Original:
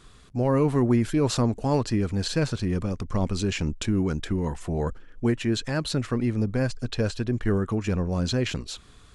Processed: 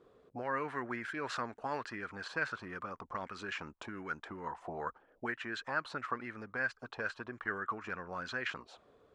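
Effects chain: auto-wah 470–1600 Hz, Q 3.4, up, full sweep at -20.5 dBFS; gain +4.5 dB

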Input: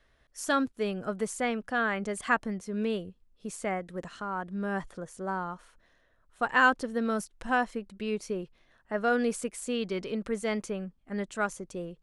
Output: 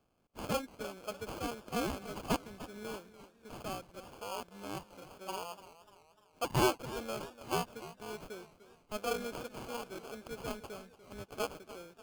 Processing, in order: HPF 1200 Hz 6 dB/oct; sample-rate reducer 1900 Hz, jitter 0%; warbling echo 0.296 s, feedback 50%, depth 103 cents, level -15 dB; gain -3 dB

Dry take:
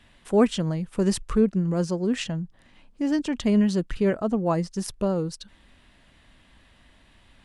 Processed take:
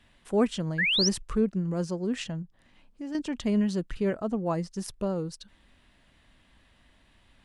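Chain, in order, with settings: 0.78–1.09 painted sound rise 1600–6200 Hz -20 dBFS; 2.42–3.15 compressor 1.5:1, threshold -42 dBFS, peak gain reduction 8 dB; gain -5 dB

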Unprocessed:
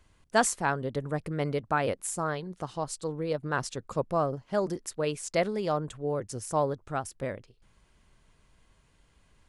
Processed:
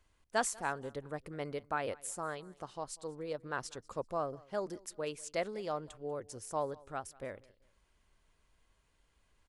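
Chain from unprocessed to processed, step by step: bell 150 Hz -7 dB 1.6 oct; feedback echo 0.192 s, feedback 32%, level -23.5 dB; gain -7.5 dB

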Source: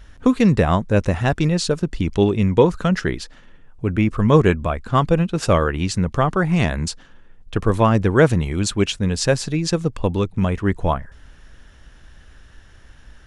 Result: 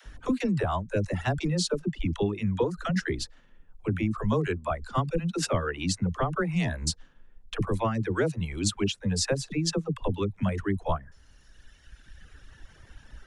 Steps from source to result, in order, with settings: reverb removal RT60 1.9 s; compressor 5:1, threshold -24 dBFS, peak gain reduction 14 dB; dispersion lows, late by 62 ms, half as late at 350 Hz

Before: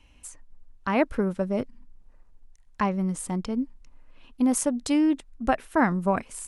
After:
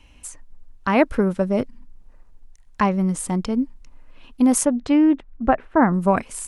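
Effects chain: 4.64–5.92 LPF 2800 Hz -> 1300 Hz 12 dB/oct; gain +6 dB

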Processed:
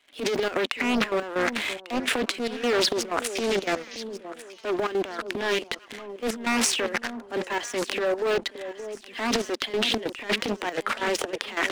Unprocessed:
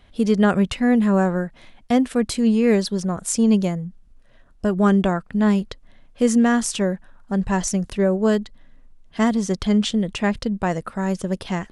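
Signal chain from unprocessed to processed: de-esser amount 95%; steep high-pass 250 Hz 72 dB/oct; bell 2500 Hz +12.5 dB 1.6 oct; sample leveller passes 3; reverse; compressor 6:1, threshold -27 dBFS, peak gain reduction 15 dB; reverse; transient shaper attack -9 dB, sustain +10 dB; painted sound noise, 3.24–4.03, 1900–6700 Hz -45 dBFS; step gate ".xxxxx.xx.xxx.x." 188 bpm -12 dB; on a send: echo with dull and thin repeats by turns 0.573 s, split 930 Hz, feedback 53%, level -11 dB; on the sum: Doppler distortion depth 0.67 ms; gain +4 dB

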